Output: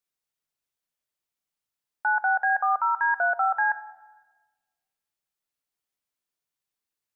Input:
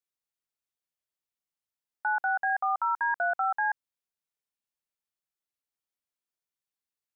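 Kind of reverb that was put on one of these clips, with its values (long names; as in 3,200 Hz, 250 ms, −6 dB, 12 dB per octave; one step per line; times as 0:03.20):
rectangular room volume 1,100 cubic metres, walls mixed, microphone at 0.41 metres
level +3.5 dB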